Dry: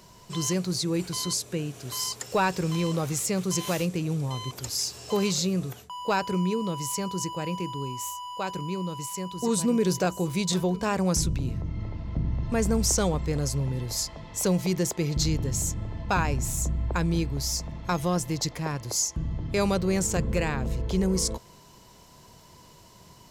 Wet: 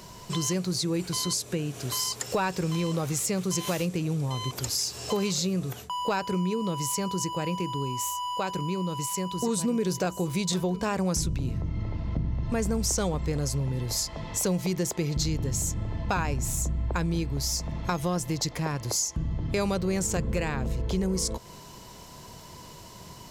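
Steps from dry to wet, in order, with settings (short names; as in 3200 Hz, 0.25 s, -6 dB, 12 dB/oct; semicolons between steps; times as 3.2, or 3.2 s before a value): compressor 2.5:1, threshold -35 dBFS, peak gain reduction 10.5 dB; gain +6.5 dB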